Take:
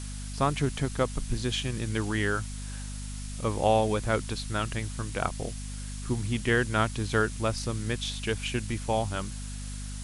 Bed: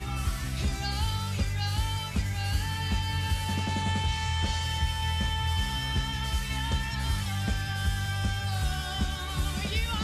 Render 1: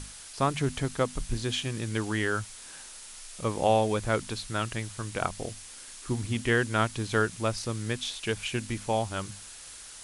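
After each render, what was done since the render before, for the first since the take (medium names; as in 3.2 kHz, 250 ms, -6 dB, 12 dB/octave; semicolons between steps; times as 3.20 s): hum notches 50/100/150/200/250 Hz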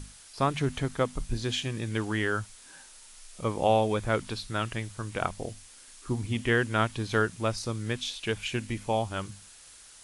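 noise print and reduce 6 dB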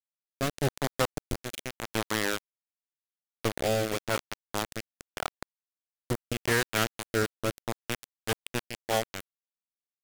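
bit crusher 4-bit; rotary cabinet horn 0.85 Hz, later 6.3 Hz, at 7.88 s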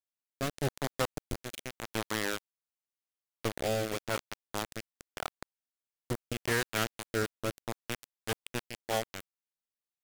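trim -4 dB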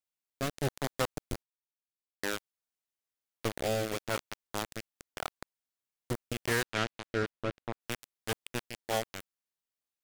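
1.43–2.23 s: mute; 6.62–7.79 s: low-pass 5.9 kHz -> 2.5 kHz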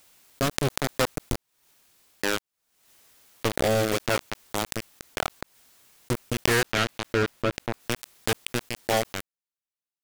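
waveshaping leveller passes 3; swell ahead of each attack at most 66 dB/s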